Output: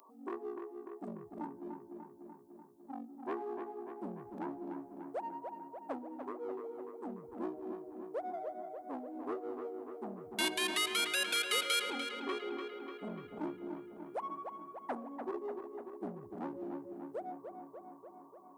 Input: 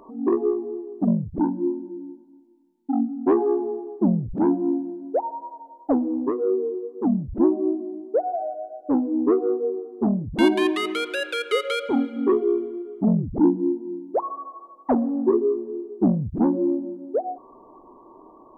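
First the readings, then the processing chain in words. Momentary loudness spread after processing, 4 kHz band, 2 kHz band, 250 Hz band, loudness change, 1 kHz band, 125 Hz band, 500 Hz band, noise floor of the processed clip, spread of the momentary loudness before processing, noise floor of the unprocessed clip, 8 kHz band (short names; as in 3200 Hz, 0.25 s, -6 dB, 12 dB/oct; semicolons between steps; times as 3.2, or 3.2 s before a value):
17 LU, -1.5 dB, -5.0 dB, -22.0 dB, -15.5 dB, -11.0 dB, -26.0 dB, -18.0 dB, -57 dBFS, 12 LU, -50 dBFS, n/a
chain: one diode to ground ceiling -10 dBFS; differentiator; darkening echo 0.295 s, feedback 70%, low-pass 3400 Hz, level -6.5 dB; gain +5.5 dB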